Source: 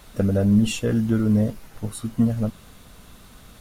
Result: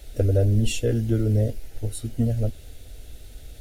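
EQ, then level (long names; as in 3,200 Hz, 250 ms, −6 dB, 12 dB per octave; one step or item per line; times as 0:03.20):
low-shelf EQ 160 Hz +10.5 dB
phaser with its sweep stopped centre 450 Hz, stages 4
0.0 dB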